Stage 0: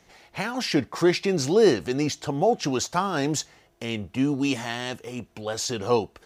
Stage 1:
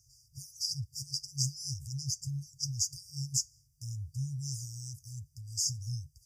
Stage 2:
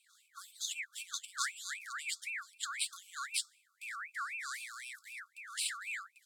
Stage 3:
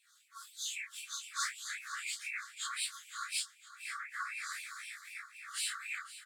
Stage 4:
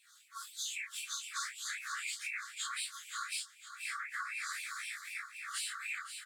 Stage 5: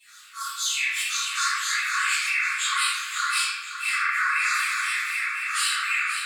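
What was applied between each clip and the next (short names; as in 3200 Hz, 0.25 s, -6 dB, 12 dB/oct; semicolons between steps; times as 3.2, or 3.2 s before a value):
HPF 55 Hz; FFT band-reject 140–4700 Hz
ring modulator with a swept carrier 1900 Hz, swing 35%, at 3.9 Hz; gain -2 dB
phase scrambler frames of 0.1 s; feedback echo 0.511 s, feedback 53%, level -15 dB
compressor 6:1, threshold -41 dBFS, peak gain reduction 10 dB; gain +4.5 dB
reverb RT60 1.3 s, pre-delay 3 ms, DRR -15.5 dB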